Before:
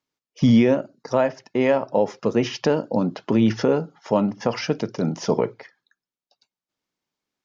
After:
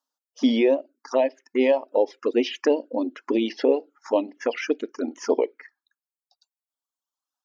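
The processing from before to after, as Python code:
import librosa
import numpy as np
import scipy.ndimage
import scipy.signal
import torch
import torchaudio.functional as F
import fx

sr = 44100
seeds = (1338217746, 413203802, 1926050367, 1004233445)

y = fx.env_phaser(x, sr, low_hz=380.0, high_hz=1400.0, full_db=-17.0)
y = fx.dereverb_blind(y, sr, rt60_s=1.8)
y = fx.brickwall_highpass(y, sr, low_hz=240.0)
y = y * librosa.db_to_amplitude(2.5)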